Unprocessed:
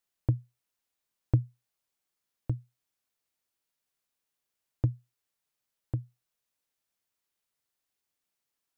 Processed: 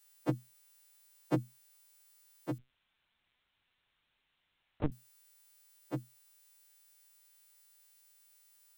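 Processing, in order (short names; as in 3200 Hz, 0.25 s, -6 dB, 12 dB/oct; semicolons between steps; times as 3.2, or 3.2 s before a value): frequency quantiser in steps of 2 st; steep high-pass 150 Hz 72 dB/oct; 2.58–4.92 LPC vocoder at 8 kHz pitch kept; gain +8.5 dB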